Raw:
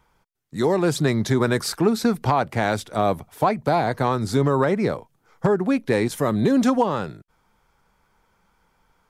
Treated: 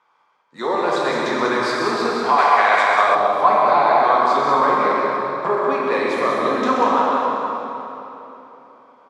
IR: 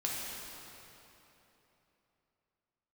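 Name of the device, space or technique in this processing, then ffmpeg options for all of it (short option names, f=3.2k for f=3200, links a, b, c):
station announcement: -filter_complex "[0:a]highpass=490,lowpass=4.2k,equalizer=f=1.1k:t=o:w=0.37:g=9,aecho=1:1:131.2|189.5:0.355|0.501[a];[1:a]atrim=start_sample=2205[b];[a][b]afir=irnorm=-1:irlink=0,asettb=1/sr,asplit=3[c][d][e];[c]atrim=end=2.384[f];[d]atrim=start=2.38:end=3.15,asetpts=PTS-STARTPTS,afade=t=in:d=0.004:c=qsin,afade=t=out:st=0.766:d=0.004:c=qsin,equalizer=f=125:t=o:w=1:g=-8,equalizer=f=250:t=o:w=1:g=-8,equalizer=f=2k:t=o:w=1:g=8,equalizer=f=8k:t=o:w=1:g=6[g];[e]atrim=start=3.146[h];[f][g]acrossfade=d=0.004:c1=hsin:c2=qsin[i];[i][h]acrossfade=d=0.004:c1=qsin:c2=hsin"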